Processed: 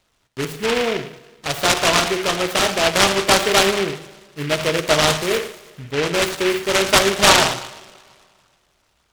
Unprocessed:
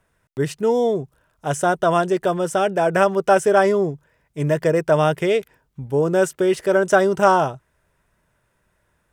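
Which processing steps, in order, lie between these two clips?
parametric band 1,300 Hz +11.5 dB 0.72 octaves
on a send: feedback echo with a high-pass in the loop 111 ms, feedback 57%, high-pass 1,200 Hz, level −11.5 dB
on the sum: coupled-rooms reverb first 0.67 s, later 2.3 s, from −19 dB, DRR 5.5 dB
short delay modulated by noise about 2,000 Hz, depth 0.18 ms
level −3.5 dB

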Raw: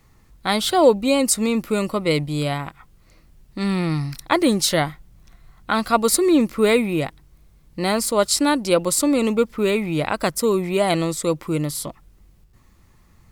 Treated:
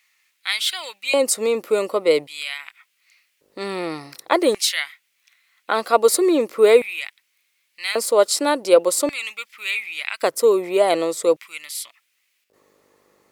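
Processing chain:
hum with harmonics 50 Hz, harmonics 12, −47 dBFS −9 dB per octave
auto-filter high-pass square 0.44 Hz 460–2,300 Hz
level −1.5 dB

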